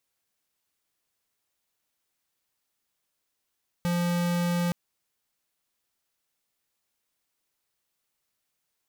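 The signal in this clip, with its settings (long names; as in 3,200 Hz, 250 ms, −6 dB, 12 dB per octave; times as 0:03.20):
tone square 174 Hz −26 dBFS 0.87 s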